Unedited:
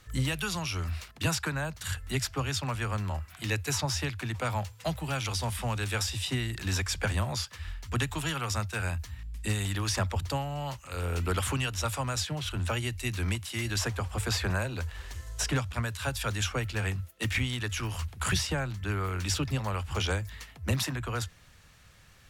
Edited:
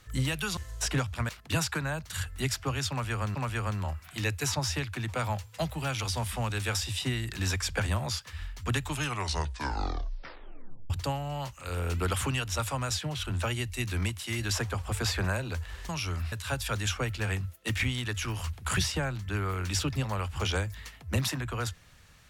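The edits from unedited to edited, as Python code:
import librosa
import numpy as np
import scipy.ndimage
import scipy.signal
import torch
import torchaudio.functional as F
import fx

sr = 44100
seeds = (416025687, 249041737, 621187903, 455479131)

y = fx.edit(x, sr, fx.swap(start_s=0.57, length_s=0.43, other_s=15.15, other_length_s=0.72),
    fx.repeat(start_s=2.61, length_s=0.45, count=2),
    fx.tape_stop(start_s=8.13, length_s=2.03), tone=tone)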